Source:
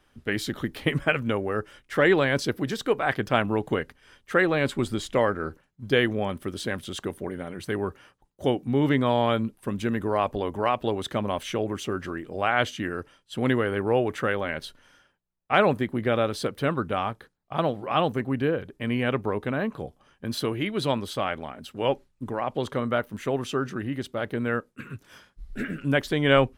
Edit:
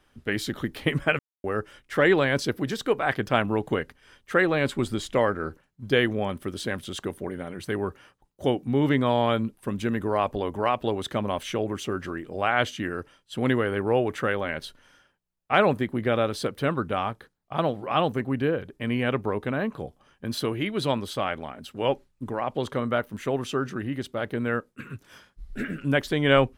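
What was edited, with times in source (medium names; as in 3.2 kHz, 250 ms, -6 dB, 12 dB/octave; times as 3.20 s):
1.19–1.44 s: mute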